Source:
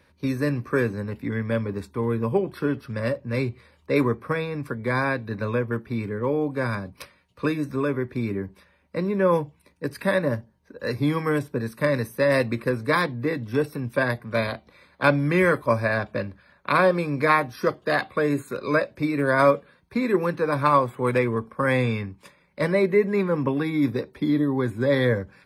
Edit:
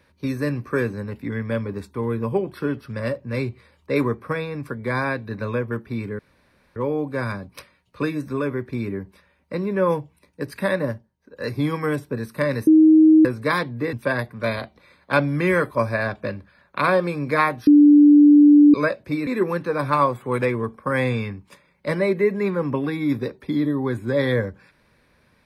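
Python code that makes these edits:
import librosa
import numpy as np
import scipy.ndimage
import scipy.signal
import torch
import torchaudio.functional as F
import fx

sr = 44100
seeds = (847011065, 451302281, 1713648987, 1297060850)

y = fx.edit(x, sr, fx.insert_room_tone(at_s=6.19, length_s=0.57),
    fx.fade_down_up(start_s=10.2, length_s=0.78, db=-9.5, fade_s=0.35, curve='qsin'),
    fx.bleep(start_s=12.1, length_s=0.58, hz=314.0, db=-8.5),
    fx.cut(start_s=13.36, length_s=0.48),
    fx.bleep(start_s=17.58, length_s=1.07, hz=293.0, db=-7.5),
    fx.cut(start_s=19.18, length_s=0.82), tone=tone)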